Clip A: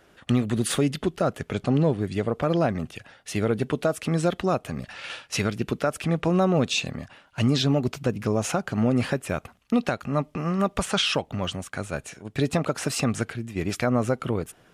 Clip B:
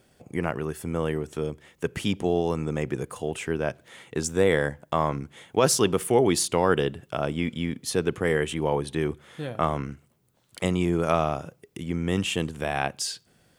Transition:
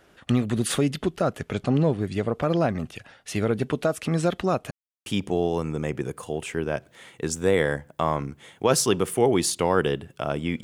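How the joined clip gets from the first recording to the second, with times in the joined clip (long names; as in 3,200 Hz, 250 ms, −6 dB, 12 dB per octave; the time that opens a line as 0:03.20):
clip A
0:04.71–0:05.06: silence
0:05.06: continue with clip B from 0:01.99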